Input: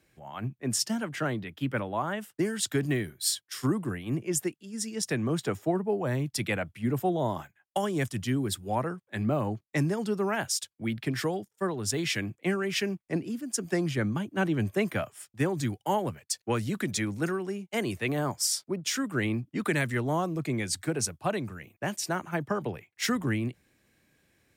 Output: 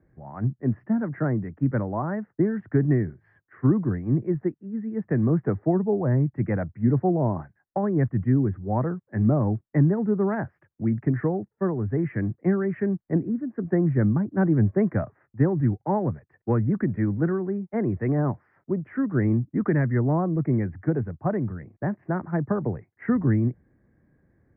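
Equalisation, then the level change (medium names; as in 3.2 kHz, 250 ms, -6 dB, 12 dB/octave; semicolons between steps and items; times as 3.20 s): elliptic low-pass 1.9 kHz, stop band 50 dB; distance through air 410 m; bass shelf 410 Hz +11.5 dB; 0.0 dB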